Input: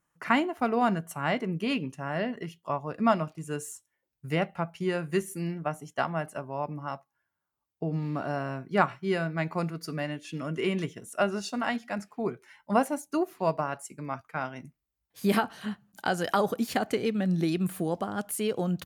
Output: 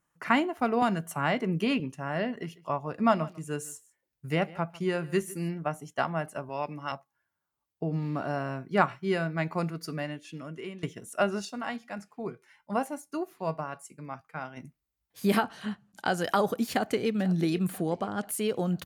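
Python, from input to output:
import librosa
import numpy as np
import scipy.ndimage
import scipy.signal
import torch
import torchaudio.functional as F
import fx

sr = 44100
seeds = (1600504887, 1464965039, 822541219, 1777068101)

y = fx.band_squash(x, sr, depth_pct=70, at=(0.82, 1.8))
y = fx.echo_single(y, sr, ms=148, db=-21.0, at=(2.39, 5.49), fade=0.02)
y = fx.weighting(y, sr, curve='D', at=(6.49, 6.92))
y = fx.comb_fb(y, sr, f0_hz=160.0, decay_s=0.2, harmonics='odd', damping=0.0, mix_pct=50, at=(11.45, 14.57))
y = fx.lowpass(y, sr, hz=10000.0, slope=12, at=(15.43, 16.09))
y = fx.echo_throw(y, sr, start_s=16.7, length_s=0.42, ms=490, feedback_pct=55, wet_db=-17.5)
y = fx.lowpass(y, sr, hz=8100.0, slope=12, at=(17.78, 18.29))
y = fx.edit(y, sr, fx.fade_out_to(start_s=9.83, length_s=1.0, floor_db=-17.0), tone=tone)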